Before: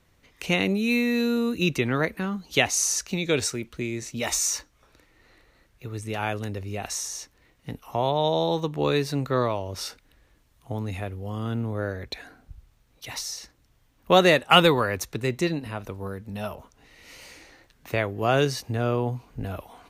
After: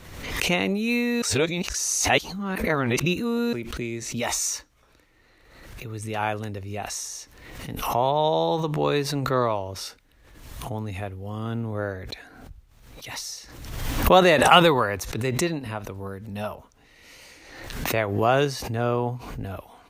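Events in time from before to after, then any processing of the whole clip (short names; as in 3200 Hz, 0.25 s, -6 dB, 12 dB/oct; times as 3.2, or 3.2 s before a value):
1.22–3.53 reverse
whole clip: dynamic EQ 900 Hz, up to +5 dB, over -37 dBFS, Q 1; backwards sustainer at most 50 dB/s; gain -1.5 dB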